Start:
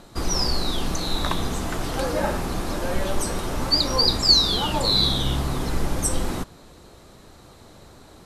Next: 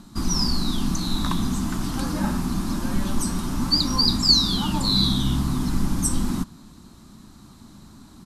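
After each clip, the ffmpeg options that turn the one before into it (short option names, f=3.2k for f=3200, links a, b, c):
-af "firequalizer=gain_entry='entry(110,0);entry(220,10);entry(470,-16);entry(1000,-1);entry(2000,-7);entry(4800,0)':delay=0.05:min_phase=1"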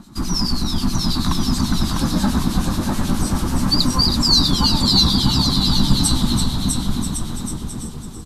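-filter_complex "[0:a]asplit=2[a][b];[b]asplit=6[c][d][e][f][g][h];[c]adelay=336,afreqshift=-81,volume=-8dB[i];[d]adelay=672,afreqshift=-162,volume=-13.4dB[j];[e]adelay=1008,afreqshift=-243,volume=-18.7dB[k];[f]adelay=1344,afreqshift=-324,volume=-24.1dB[l];[g]adelay=1680,afreqshift=-405,volume=-29.4dB[m];[h]adelay=2016,afreqshift=-486,volume=-34.8dB[n];[i][j][k][l][m][n]amix=inputs=6:normalize=0[o];[a][o]amix=inputs=2:normalize=0,acrossover=split=2100[p][q];[p]aeval=exprs='val(0)*(1-0.7/2+0.7/2*cos(2*PI*9.3*n/s))':c=same[r];[q]aeval=exprs='val(0)*(1-0.7/2-0.7/2*cos(2*PI*9.3*n/s))':c=same[s];[r][s]amix=inputs=2:normalize=0,asplit=2[t][u];[u]aecho=0:1:650|1105|1424|1646|1803:0.631|0.398|0.251|0.158|0.1[v];[t][v]amix=inputs=2:normalize=0,volume=5.5dB"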